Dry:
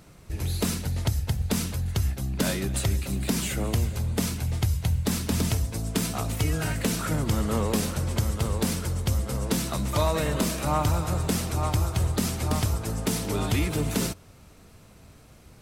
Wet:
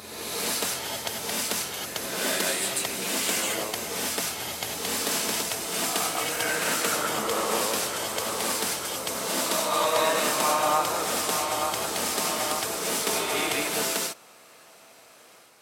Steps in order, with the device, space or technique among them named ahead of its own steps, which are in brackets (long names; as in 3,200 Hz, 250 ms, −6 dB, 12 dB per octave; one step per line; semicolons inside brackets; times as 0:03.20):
ghost voice (reversed playback; convolution reverb RT60 1.5 s, pre-delay 111 ms, DRR −2.5 dB; reversed playback; high-pass filter 590 Hz 12 dB per octave)
level +2.5 dB